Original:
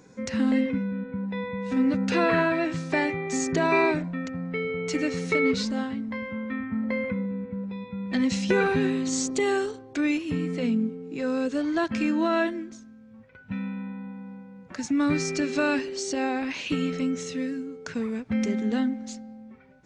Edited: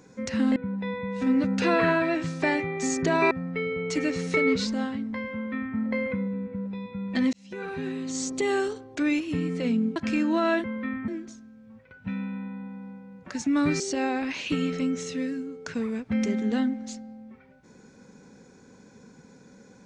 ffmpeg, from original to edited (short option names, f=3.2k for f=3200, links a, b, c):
-filter_complex "[0:a]asplit=8[a][b][c][d][e][f][g][h];[a]atrim=end=0.562[i];[b]atrim=start=1.058:end=3.812[j];[c]atrim=start=4.288:end=8.31,asetpts=PTS-STARTPTS,afade=t=out:st=4.018:d=0.004:c=hsin[k];[d]atrim=start=8.31:end=10.942,asetpts=PTS-STARTPTS,afade=t=in:d=1.32[l];[e]atrim=start=11.838:end=12.522[m];[f]atrim=start=6.308:end=6.752[n];[g]atrim=start=12.518:end=15.242[o];[h]atrim=start=15.998[p];[i][j]acrossfade=d=0.004:c1=hsin:c2=hsin[q];[k][l]concat=n=2:v=0:a=1[r];[q][r]acrossfade=d=0.004:c1=hsin:c2=hsin[s];[s][m]acrossfade=d=0.004:c1=hsin:c2=hsin[t];[t][n]acrossfade=d=0.004:c1=hsin:c2=hsin[u];[u][o]acrossfade=d=0.004:c1=hsin:c2=hsin[v];[v][p]acrossfade=d=0.004:c1=hsin:c2=hsin"